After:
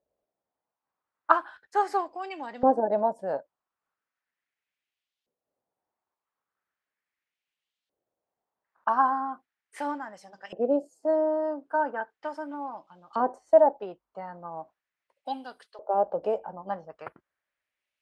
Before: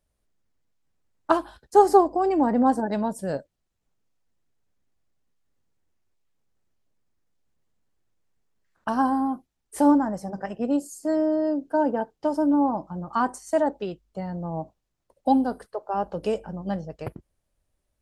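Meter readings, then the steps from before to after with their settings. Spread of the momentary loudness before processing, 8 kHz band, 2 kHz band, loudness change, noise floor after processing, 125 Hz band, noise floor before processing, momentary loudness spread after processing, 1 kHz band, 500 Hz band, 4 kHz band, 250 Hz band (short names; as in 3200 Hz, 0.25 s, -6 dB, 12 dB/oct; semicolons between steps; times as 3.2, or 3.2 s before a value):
15 LU, under -15 dB, +1.0 dB, -3.5 dB, under -85 dBFS, under -15 dB, -78 dBFS, 18 LU, -2.5 dB, -1.5 dB, n/a, -12.5 dB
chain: LFO band-pass saw up 0.38 Hz 510–3600 Hz; gain +6.5 dB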